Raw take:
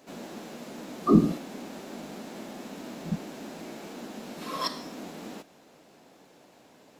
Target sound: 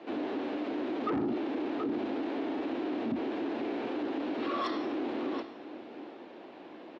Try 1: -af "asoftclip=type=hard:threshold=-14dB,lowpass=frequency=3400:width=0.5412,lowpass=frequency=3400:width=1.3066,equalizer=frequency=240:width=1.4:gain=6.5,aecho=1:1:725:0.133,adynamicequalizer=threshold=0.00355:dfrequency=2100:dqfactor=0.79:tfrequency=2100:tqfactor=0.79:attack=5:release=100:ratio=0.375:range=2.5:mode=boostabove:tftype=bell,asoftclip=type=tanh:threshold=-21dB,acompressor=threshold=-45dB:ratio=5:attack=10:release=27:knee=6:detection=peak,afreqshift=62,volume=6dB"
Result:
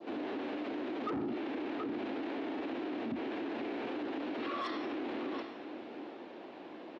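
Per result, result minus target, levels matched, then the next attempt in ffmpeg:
hard clipping: distortion +32 dB; downward compressor: peak gain reduction +5 dB; 2,000 Hz band +4.0 dB
-af "asoftclip=type=hard:threshold=-8dB,lowpass=frequency=3400:width=0.5412,lowpass=frequency=3400:width=1.3066,equalizer=frequency=240:width=1.4:gain=6.5,aecho=1:1:725:0.133,adynamicequalizer=threshold=0.00355:dfrequency=2100:dqfactor=0.79:tfrequency=2100:tqfactor=0.79:attack=5:release=100:ratio=0.375:range=2.5:mode=boostabove:tftype=bell,asoftclip=type=tanh:threshold=-21dB,acompressor=threshold=-45dB:ratio=5:attack=10:release=27:knee=6:detection=peak,afreqshift=62,volume=6dB"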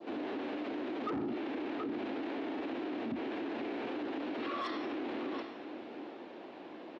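downward compressor: peak gain reduction +5 dB; 2,000 Hz band +4.0 dB
-af "asoftclip=type=hard:threshold=-8dB,lowpass=frequency=3400:width=0.5412,lowpass=frequency=3400:width=1.3066,equalizer=frequency=240:width=1.4:gain=6.5,aecho=1:1:725:0.133,adynamicequalizer=threshold=0.00355:dfrequency=2100:dqfactor=0.79:tfrequency=2100:tqfactor=0.79:attack=5:release=100:ratio=0.375:range=2.5:mode=boostabove:tftype=bell,asoftclip=type=tanh:threshold=-21dB,acompressor=threshold=-38.5dB:ratio=5:attack=10:release=27:knee=6:detection=peak,afreqshift=62,volume=6dB"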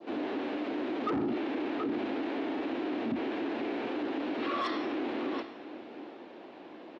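2,000 Hz band +3.0 dB
-af "asoftclip=type=hard:threshold=-8dB,lowpass=frequency=3400:width=0.5412,lowpass=frequency=3400:width=1.3066,equalizer=frequency=240:width=1.4:gain=6.5,aecho=1:1:725:0.133,asoftclip=type=tanh:threshold=-21dB,acompressor=threshold=-38.5dB:ratio=5:attack=10:release=27:knee=6:detection=peak,afreqshift=62,volume=6dB"

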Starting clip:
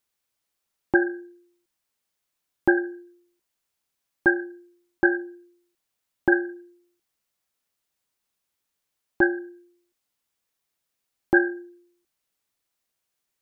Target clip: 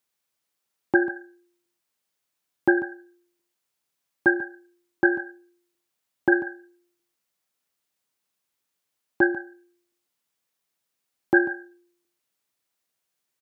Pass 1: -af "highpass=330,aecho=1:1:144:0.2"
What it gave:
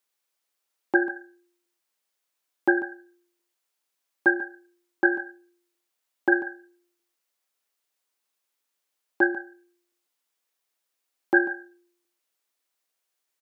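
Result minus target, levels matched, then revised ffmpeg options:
125 Hz band −12.0 dB
-af "highpass=100,aecho=1:1:144:0.2"

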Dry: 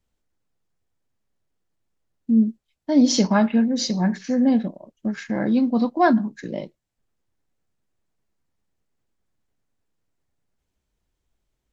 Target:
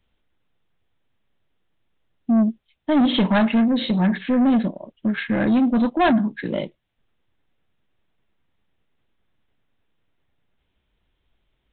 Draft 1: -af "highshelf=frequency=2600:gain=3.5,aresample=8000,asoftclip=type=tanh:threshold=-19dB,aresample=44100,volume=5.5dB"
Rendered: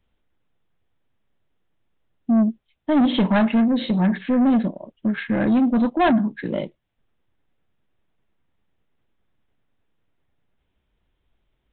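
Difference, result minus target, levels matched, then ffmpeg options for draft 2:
4,000 Hz band −3.5 dB
-af "highshelf=frequency=2600:gain=10.5,aresample=8000,asoftclip=type=tanh:threshold=-19dB,aresample=44100,volume=5.5dB"

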